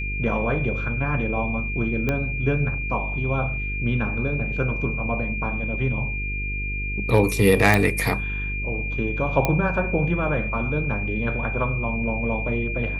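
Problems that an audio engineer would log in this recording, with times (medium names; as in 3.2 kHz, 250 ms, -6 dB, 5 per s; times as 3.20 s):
buzz 50 Hz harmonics 9 -29 dBFS
whine 2.4 kHz -29 dBFS
2.09 s: pop -11 dBFS
7.74 s: pop -5 dBFS
9.45 s: pop -7 dBFS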